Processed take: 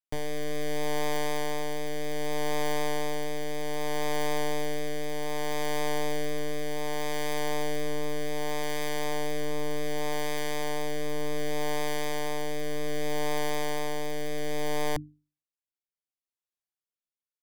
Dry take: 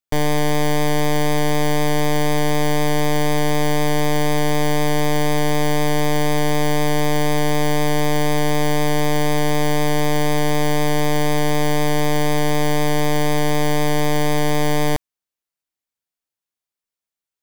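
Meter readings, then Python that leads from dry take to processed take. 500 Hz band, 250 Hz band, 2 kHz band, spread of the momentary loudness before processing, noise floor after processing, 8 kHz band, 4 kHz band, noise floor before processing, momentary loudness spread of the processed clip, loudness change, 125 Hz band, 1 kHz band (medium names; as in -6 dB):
-10.5 dB, -15.5 dB, -11.5 dB, 0 LU, under -85 dBFS, -11.0 dB, -11.0 dB, under -85 dBFS, 4 LU, -12.5 dB, -19.5 dB, -12.5 dB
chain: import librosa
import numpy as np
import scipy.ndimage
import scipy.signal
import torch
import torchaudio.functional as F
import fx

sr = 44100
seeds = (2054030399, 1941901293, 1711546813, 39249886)

y = fx.hum_notches(x, sr, base_hz=50, count=6)
y = fx.rotary(y, sr, hz=0.65)
y = y * librosa.db_to_amplitude(-8.5)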